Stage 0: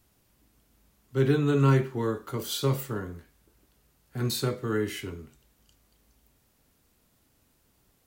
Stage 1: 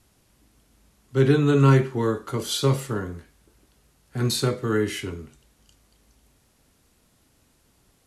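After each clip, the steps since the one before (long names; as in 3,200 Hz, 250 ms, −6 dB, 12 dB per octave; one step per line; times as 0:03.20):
elliptic low-pass filter 12,000 Hz, stop band 40 dB
level +6 dB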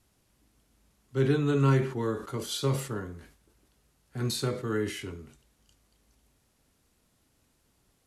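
level that may fall only so fast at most 110 dB per second
level −7 dB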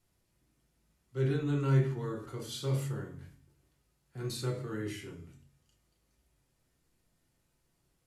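tuned comb filter 140 Hz, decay 0.69 s, harmonics odd, mix 70%
convolution reverb RT60 0.35 s, pre-delay 6 ms, DRR 0.5 dB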